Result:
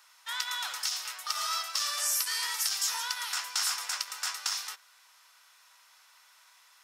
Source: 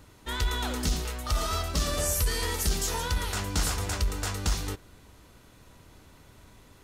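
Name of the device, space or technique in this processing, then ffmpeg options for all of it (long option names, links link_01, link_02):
headphones lying on a table: -af "highpass=frequency=1000:width=0.5412,highpass=frequency=1000:width=1.3066,equalizer=frequency=5300:width_type=o:width=0.25:gain=7.5"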